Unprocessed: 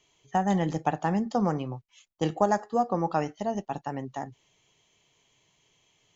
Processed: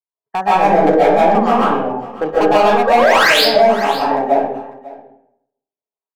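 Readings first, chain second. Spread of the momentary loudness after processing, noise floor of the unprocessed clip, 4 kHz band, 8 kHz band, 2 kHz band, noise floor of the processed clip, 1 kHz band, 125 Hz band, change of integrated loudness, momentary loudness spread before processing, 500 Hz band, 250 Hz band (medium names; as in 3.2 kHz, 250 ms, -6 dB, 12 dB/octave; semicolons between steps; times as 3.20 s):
13 LU, -69 dBFS, +28.0 dB, no reading, +23.5 dB, under -85 dBFS, +16.5 dB, +2.5 dB, +16.0 dB, 12 LU, +18.0 dB, +9.5 dB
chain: de-hum 48.92 Hz, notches 12; level-controlled noise filter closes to 1.5 kHz, open at -25.5 dBFS; gate -54 dBFS, range -47 dB; in parallel at -2 dB: compression, threshold -32 dBFS, peak gain reduction 14 dB; on the sum: wah-wah 0.87 Hz 510–1200 Hz, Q 2.6; painted sound rise, 2.87–3.30 s, 490–5300 Hz -26 dBFS; overload inside the chain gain 28 dB; small resonant body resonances 240/420/1600 Hz, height 9 dB, ringing for 35 ms; on a send: delay 546 ms -19.5 dB; on the sum: algorithmic reverb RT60 0.75 s, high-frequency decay 0.65×, pre-delay 105 ms, DRR -9.5 dB; loudness maximiser +13.5 dB; trim -1 dB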